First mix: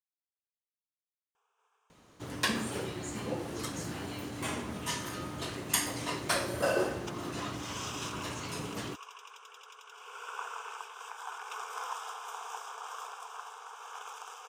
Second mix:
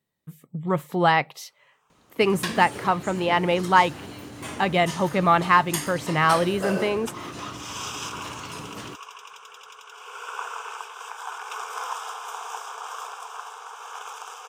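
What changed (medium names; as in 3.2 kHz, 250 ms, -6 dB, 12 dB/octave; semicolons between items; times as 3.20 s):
speech: unmuted; first sound +7.0 dB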